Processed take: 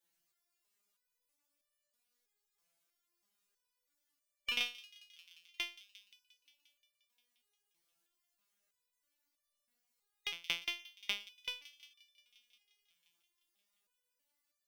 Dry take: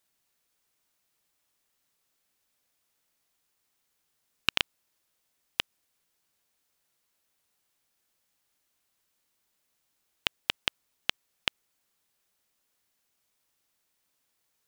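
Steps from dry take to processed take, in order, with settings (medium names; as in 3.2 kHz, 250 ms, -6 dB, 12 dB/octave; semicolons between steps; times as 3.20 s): coarse spectral quantiser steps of 15 dB; feedback echo behind a high-pass 176 ms, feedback 73%, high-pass 3.4 kHz, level -15.5 dB; resonator arpeggio 3.1 Hz 170–590 Hz; trim +7 dB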